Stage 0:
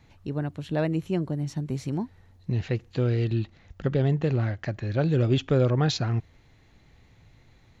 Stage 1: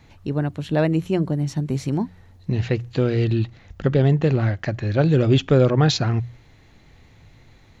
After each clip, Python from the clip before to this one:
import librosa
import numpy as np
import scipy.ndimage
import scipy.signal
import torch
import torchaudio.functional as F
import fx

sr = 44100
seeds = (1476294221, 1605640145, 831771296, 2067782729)

y = fx.hum_notches(x, sr, base_hz=60, count=3)
y = y * librosa.db_to_amplitude(6.5)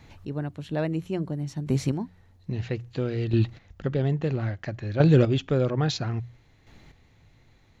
y = fx.chopper(x, sr, hz=0.6, depth_pct=60, duty_pct=15)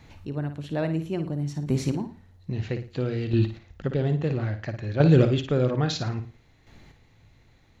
y = fx.room_flutter(x, sr, wall_m=9.5, rt60_s=0.36)